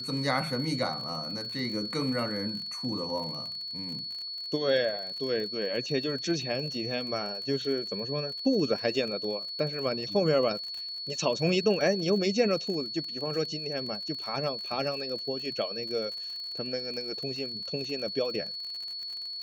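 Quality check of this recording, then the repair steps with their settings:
crackle 44/s -36 dBFS
tone 4400 Hz -35 dBFS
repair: de-click; notch 4400 Hz, Q 30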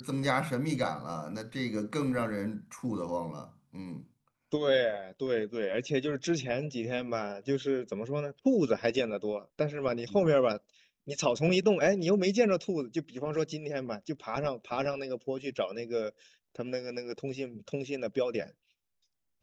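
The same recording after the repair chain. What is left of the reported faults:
none

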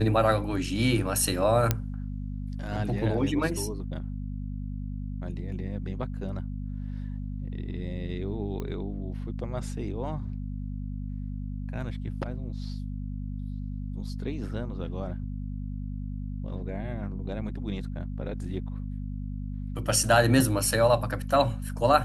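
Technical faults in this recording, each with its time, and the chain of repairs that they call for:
hum 50 Hz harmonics 5 -34 dBFS
1.71 pop -8 dBFS
8.6 pop -22 dBFS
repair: de-click; de-hum 50 Hz, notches 5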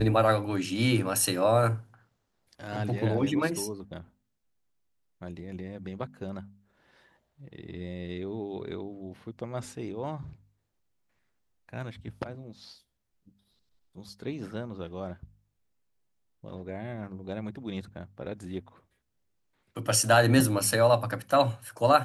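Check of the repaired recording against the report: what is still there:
none

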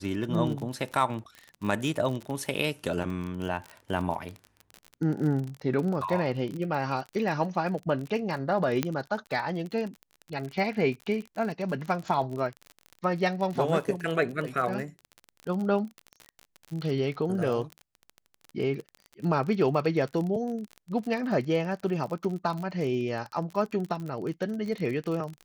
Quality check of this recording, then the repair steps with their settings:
crackle 36/s -33 dBFS
8.83 pop -11 dBFS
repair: de-click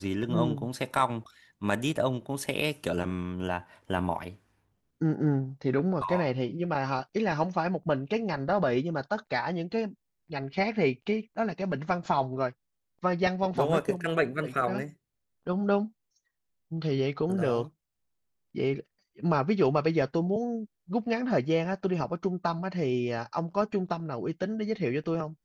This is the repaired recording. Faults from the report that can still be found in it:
none

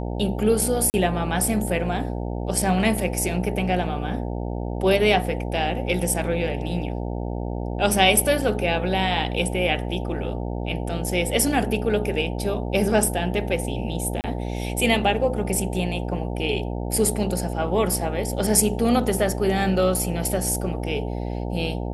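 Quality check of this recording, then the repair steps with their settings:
buzz 60 Hz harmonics 15 -28 dBFS
0.9–0.94 gap 39 ms
14.21–14.24 gap 29 ms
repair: de-hum 60 Hz, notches 15; interpolate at 0.9, 39 ms; interpolate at 14.21, 29 ms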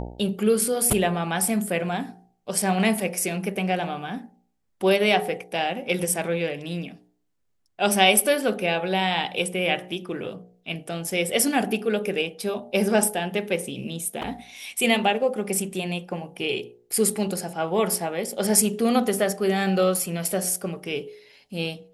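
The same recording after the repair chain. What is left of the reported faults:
none

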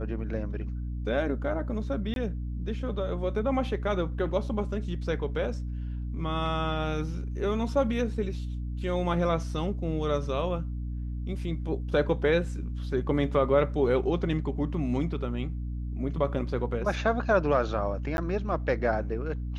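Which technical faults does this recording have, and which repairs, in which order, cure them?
hum 60 Hz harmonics 5 -33 dBFS
2.14–2.16 gap 22 ms
18.17–18.18 gap 11 ms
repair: de-hum 60 Hz, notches 5; interpolate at 2.14, 22 ms; interpolate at 18.17, 11 ms

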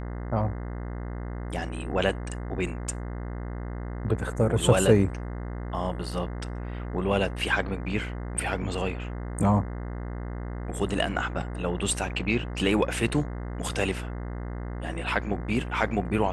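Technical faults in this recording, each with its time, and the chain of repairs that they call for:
buzz 60 Hz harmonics 35 -34 dBFS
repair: de-hum 60 Hz, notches 35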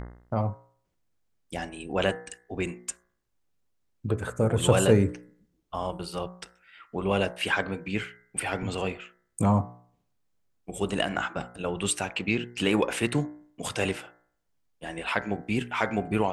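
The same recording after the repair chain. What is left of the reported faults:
none

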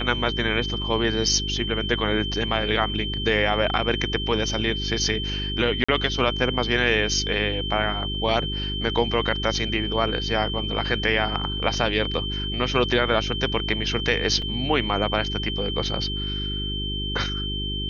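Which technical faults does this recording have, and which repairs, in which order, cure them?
hum 50 Hz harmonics 8 -30 dBFS
tone 3100 Hz -29 dBFS
5.84–5.88 gap 45 ms
14.42 gap 3.8 ms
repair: de-hum 50 Hz, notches 8; notch 3100 Hz, Q 30; interpolate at 5.84, 45 ms; interpolate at 14.42, 3.8 ms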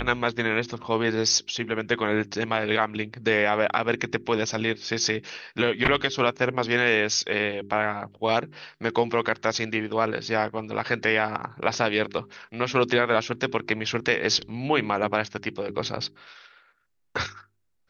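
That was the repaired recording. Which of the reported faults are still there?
none

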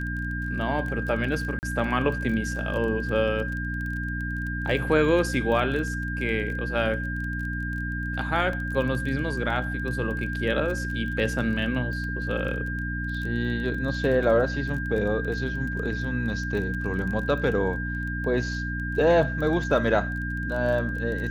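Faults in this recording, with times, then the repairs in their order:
crackle 21/s -32 dBFS
hum 60 Hz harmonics 5 -31 dBFS
tone 1600 Hz -32 dBFS
1.59–1.63 gap 39 ms
8.53 gap 2.5 ms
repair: de-click; notch 1600 Hz, Q 30; de-hum 60 Hz, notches 5; interpolate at 1.59, 39 ms; interpolate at 8.53, 2.5 ms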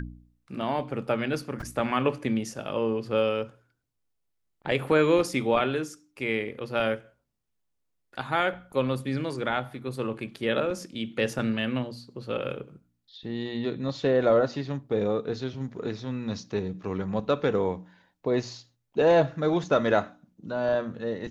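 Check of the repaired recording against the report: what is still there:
none

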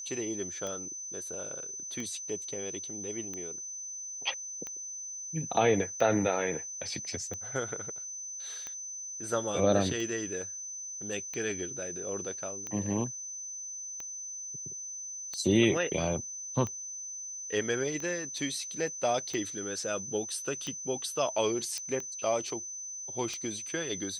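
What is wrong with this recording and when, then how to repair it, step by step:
tick 45 rpm -24 dBFS
tone 6100 Hz -38 dBFS
21.78 pop -22 dBFS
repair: de-click; notch 6100 Hz, Q 30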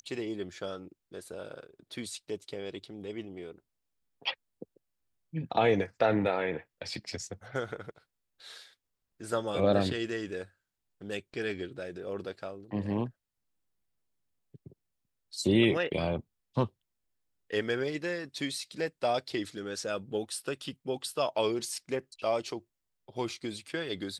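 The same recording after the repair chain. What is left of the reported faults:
none

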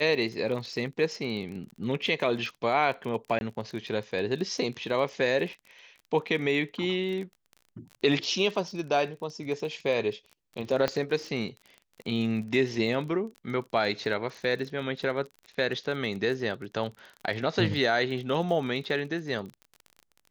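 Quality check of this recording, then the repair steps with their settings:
crackle 29/s -36 dBFS
3.39–3.41 gap 21 ms
10.88 pop -13 dBFS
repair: de-click; interpolate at 3.39, 21 ms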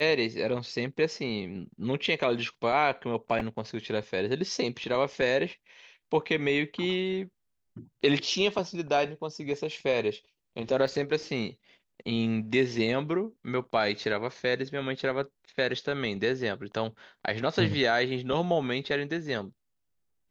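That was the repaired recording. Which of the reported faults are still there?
10.88 pop

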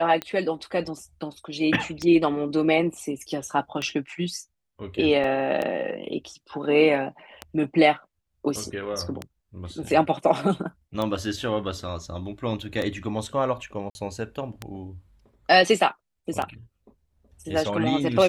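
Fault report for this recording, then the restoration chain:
tick 33 1/3 rpm -14 dBFS
5.24 gap 2.7 ms
13.9–13.95 gap 50 ms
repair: de-click; interpolate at 5.24, 2.7 ms; interpolate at 13.9, 50 ms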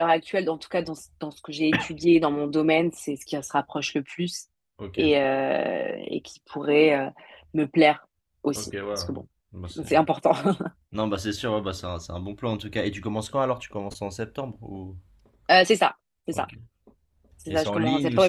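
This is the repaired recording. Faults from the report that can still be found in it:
none

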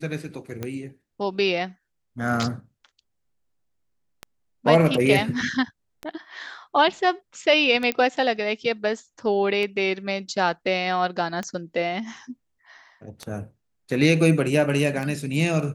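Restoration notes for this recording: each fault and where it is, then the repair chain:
tick 33 1/3 rpm -16 dBFS
7.92 pop -10 dBFS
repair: de-click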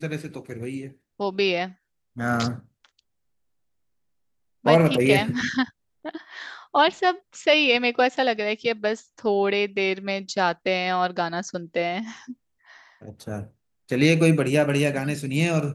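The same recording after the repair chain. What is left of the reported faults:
none

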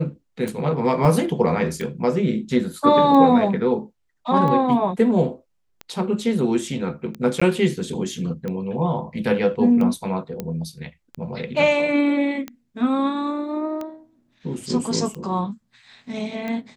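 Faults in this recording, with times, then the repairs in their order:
tick 45 rpm
1.05 gap 2.3 ms
7.4–7.42 gap 15 ms
10.4 pop -14 dBFS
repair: de-click; interpolate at 1.05, 2.3 ms; interpolate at 7.4, 15 ms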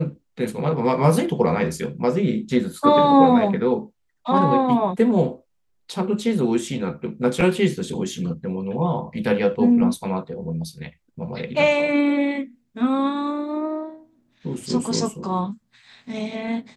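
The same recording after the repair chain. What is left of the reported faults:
none

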